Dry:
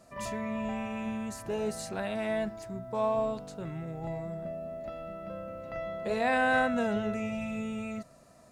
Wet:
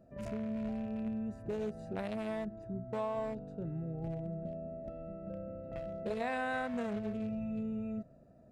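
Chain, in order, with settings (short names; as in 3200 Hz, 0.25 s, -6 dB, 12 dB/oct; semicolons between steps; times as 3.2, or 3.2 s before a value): Wiener smoothing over 41 samples; compressor 4:1, threshold -35 dBFS, peak gain reduction 11 dB; gain +1 dB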